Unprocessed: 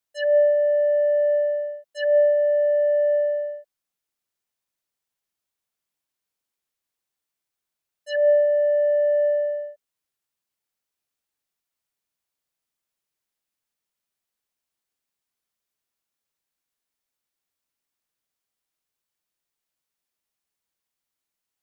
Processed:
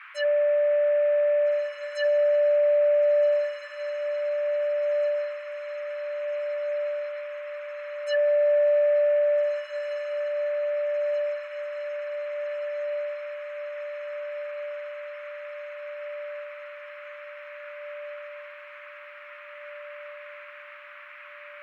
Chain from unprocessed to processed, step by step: limiter -18.5 dBFS, peak gain reduction 7 dB; diffused feedback echo 1.762 s, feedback 64%, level -6 dB; band noise 1100–2500 Hz -46 dBFS

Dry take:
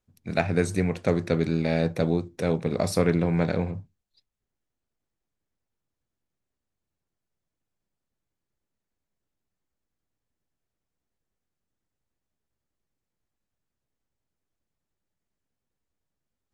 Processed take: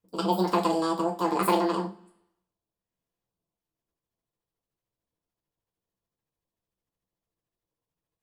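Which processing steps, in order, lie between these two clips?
two-slope reverb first 0.54 s, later 1.6 s, from -18 dB, DRR -1 dB; rotary speaker horn 0.6 Hz, later 6.7 Hz, at 7.01; wide varispeed 2.01×; gain -3.5 dB

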